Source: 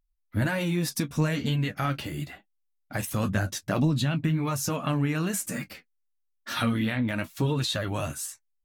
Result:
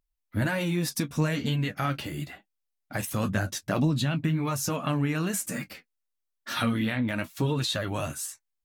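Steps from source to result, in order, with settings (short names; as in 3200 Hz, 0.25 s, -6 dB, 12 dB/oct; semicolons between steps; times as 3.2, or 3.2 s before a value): low shelf 61 Hz -7 dB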